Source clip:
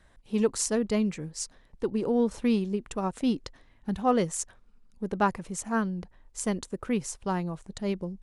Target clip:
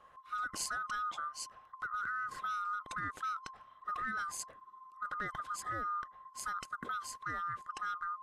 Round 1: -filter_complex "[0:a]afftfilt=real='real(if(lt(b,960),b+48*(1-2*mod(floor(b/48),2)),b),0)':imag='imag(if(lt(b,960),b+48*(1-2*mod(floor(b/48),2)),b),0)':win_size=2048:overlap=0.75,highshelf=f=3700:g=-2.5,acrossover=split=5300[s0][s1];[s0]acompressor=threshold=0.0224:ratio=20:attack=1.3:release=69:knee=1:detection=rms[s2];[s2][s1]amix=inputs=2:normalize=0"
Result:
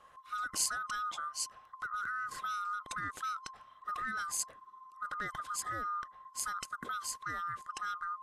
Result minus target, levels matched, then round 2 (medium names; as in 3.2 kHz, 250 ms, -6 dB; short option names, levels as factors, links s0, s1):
8 kHz band +6.0 dB
-filter_complex "[0:a]afftfilt=real='real(if(lt(b,960),b+48*(1-2*mod(floor(b/48),2)),b),0)':imag='imag(if(lt(b,960),b+48*(1-2*mod(floor(b/48),2)),b),0)':win_size=2048:overlap=0.75,highshelf=f=3700:g=-11.5,acrossover=split=5300[s0][s1];[s0]acompressor=threshold=0.0224:ratio=20:attack=1.3:release=69:knee=1:detection=rms[s2];[s2][s1]amix=inputs=2:normalize=0"